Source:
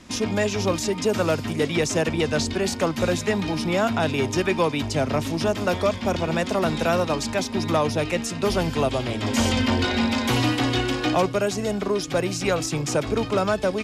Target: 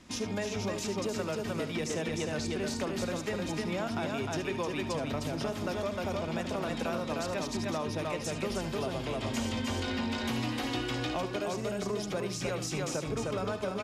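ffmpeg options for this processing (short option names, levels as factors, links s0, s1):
-filter_complex "[0:a]asplit=2[s0][s1];[s1]aecho=0:1:306:0.708[s2];[s0][s2]amix=inputs=2:normalize=0,acompressor=threshold=0.0794:ratio=6,asplit=2[s3][s4];[s4]aecho=0:1:74:0.266[s5];[s3][s5]amix=inputs=2:normalize=0,volume=0.398"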